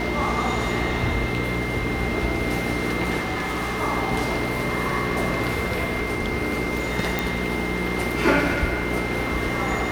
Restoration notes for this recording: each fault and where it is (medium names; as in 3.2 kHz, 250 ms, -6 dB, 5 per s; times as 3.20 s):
hum 60 Hz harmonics 7 -29 dBFS
whine 2.1 kHz -30 dBFS
3.21–3.82 s: clipped -22.5 dBFS
7.19 s: pop